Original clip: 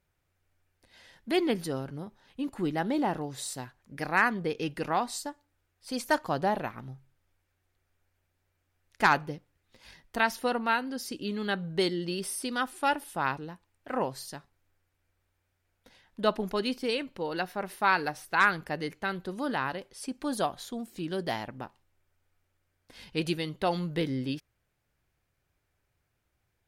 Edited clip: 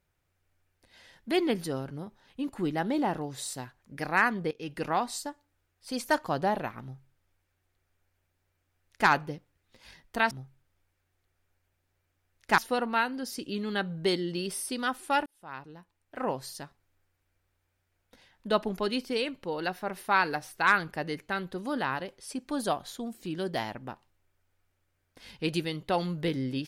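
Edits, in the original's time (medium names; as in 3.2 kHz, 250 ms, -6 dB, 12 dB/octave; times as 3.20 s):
4.51–4.81 s: fade in, from -19.5 dB
6.82–9.09 s: copy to 10.31 s
12.99–14.14 s: fade in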